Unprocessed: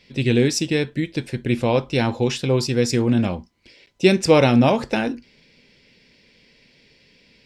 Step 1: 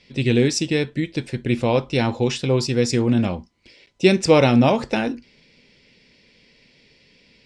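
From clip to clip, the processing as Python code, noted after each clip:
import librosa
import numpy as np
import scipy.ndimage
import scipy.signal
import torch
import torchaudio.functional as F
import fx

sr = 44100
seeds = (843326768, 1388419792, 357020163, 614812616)

y = scipy.signal.sosfilt(scipy.signal.butter(4, 9600.0, 'lowpass', fs=sr, output='sos'), x)
y = fx.notch(y, sr, hz=1600.0, q=23.0)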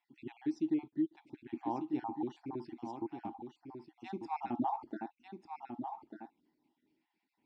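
y = fx.spec_dropout(x, sr, seeds[0], share_pct=48)
y = fx.double_bandpass(y, sr, hz=510.0, octaves=1.4)
y = y + 10.0 ** (-7.5 / 20.0) * np.pad(y, (int(1195 * sr / 1000.0), 0))[:len(y)]
y = y * 10.0 ** (-6.0 / 20.0)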